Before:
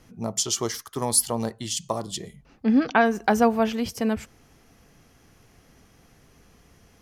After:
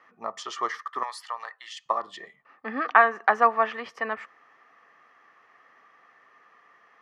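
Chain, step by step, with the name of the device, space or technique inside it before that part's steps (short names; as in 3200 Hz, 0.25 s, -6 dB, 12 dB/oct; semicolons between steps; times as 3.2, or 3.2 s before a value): tin-can telephone (BPF 660–2200 Hz; small resonant body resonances 1200/1800 Hz, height 15 dB, ringing for 20 ms); 1.03–1.86 HPF 1200 Hz 12 dB/oct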